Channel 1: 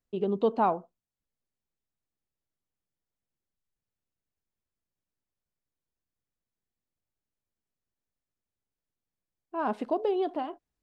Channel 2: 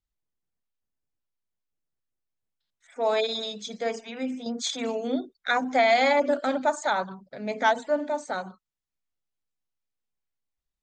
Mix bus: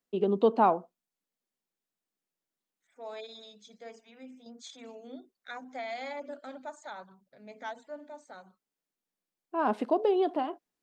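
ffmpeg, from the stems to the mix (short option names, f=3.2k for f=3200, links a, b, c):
-filter_complex "[0:a]highpass=f=180:w=0.5412,highpass=f=180:w=1.3066,volume=2dB[a];[1:a]volume=-17.5dB[b];[a][b]amix=inputs=2:normalize=0"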